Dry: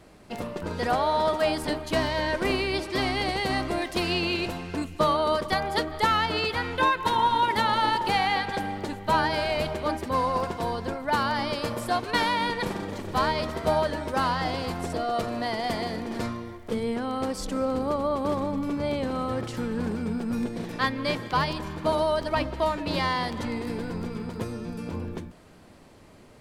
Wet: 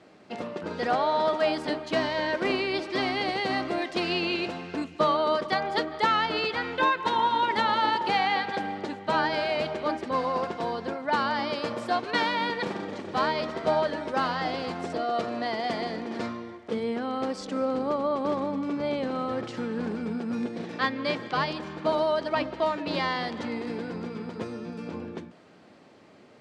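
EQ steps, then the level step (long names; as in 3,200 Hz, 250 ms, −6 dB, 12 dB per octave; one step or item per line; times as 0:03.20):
band-pass filter 190–7,100 Hz
high-frequency loss of the air 52 metres
notch filter 990 Hz, Q 15
0.0 dB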